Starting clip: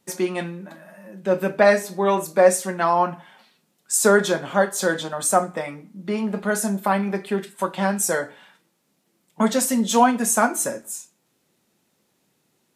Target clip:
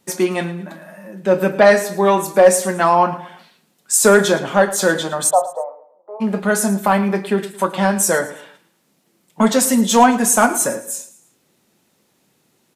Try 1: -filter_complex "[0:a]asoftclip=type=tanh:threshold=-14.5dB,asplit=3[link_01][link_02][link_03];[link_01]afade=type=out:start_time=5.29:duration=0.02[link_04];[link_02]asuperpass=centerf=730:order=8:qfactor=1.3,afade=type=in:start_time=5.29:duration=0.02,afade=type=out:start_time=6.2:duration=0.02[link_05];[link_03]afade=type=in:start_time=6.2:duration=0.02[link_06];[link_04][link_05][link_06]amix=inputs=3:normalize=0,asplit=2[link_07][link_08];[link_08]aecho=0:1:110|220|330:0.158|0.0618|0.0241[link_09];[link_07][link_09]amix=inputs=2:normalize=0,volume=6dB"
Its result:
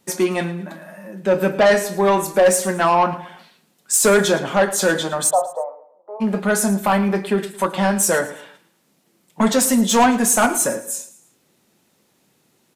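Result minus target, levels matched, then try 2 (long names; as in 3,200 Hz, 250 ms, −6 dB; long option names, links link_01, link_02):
soft clipping: distortion +10 dB
-filter_complex "[0:a]asoftclip=type=tanh:threshold=-6.5dB,asplit=3[link_01][link_02][link_03];[link_01]afade=type=out:start_time=5.29:duration=0.02[link_04];[link_02]asuperpass=centerf=730:order=8:qfactor=1.3,afade=type=in:start_time=5.29:duration=0.02,afade=type=out:start_time=6.2:duration=0.02[link_05];[link_03]afade=type=in:start_time=6.2:duration=0.02[link_06];[link_04][link_05][link_06]amix=inputs=3:normalize=0,asplit=2[link_07][link_08];[link_08]aecho=0:1:110|220|330:0.158|0.0618|0.0241[link_09];[link_07][link_09]amix=inputs=2:normalize=0,volume=6dB"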